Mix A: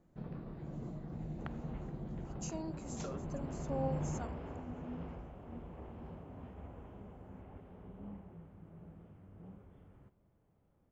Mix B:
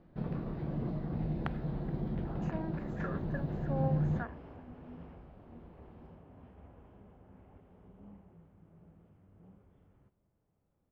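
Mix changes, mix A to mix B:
speech: add synth low-pass 1700 Hz, resonance Q 15; first sound +8.0 dB; second sound -5.5 dB

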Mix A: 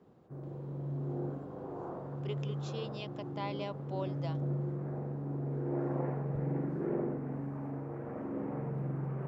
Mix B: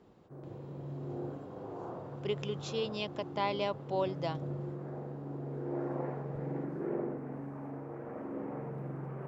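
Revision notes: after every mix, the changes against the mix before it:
speech +7.0 dB; background: add tone controls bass -6 dB, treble +1 dB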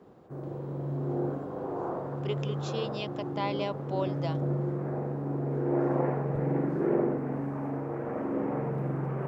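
background +9.0 dB

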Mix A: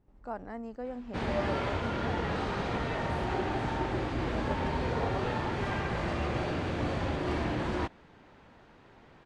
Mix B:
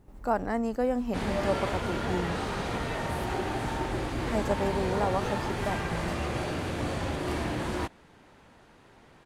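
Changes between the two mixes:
speech +11.0 dB; master: remove air absorption 110 m

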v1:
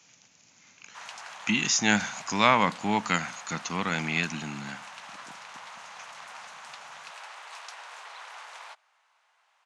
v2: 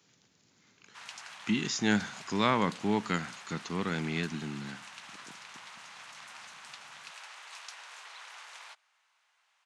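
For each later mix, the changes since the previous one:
speech: add fifteen-band EQ 400 Hz +10 dB, 2500 Hz -9 dB, 6300 Hz -12 dB; master: add bell 690 Hz -9 dB 2.2 oct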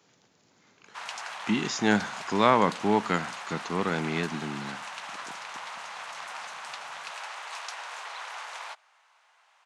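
background +5.0 dB; master: add bell 690 Hz +9 dB 2.2 oct

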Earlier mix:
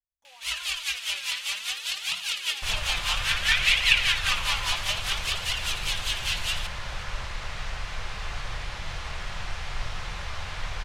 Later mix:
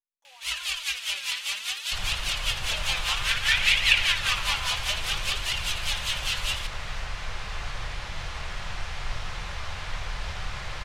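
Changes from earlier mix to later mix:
speech: add HPF 510 Hz; second sound: entry -0.70 s

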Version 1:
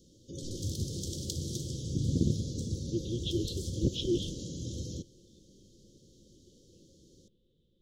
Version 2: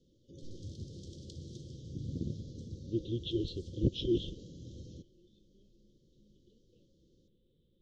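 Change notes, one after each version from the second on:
background -9.5 dB; master: add air absorption 140 m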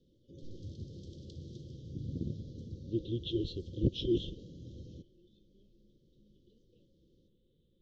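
background: add air absorption 120 m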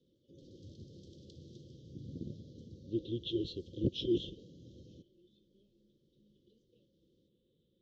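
background -3.0 dB; master: add HPF 160 Hz 6 dB/oct

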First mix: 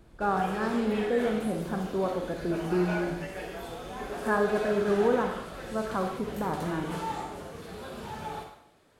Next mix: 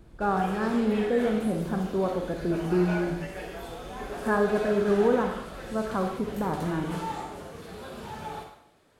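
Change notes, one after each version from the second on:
speech: add low shelf 380 Hz +4.5 dB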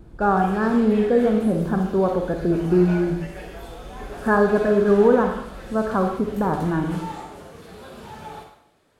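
speech +7.0 dB

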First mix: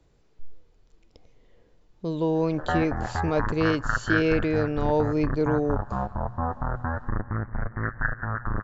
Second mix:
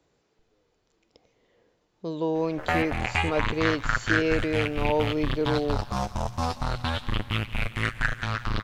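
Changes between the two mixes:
speech: add HPF 300 Hz 6 dB/oct; background: remove steep low-pass 1800 Hz 96 dB/oct

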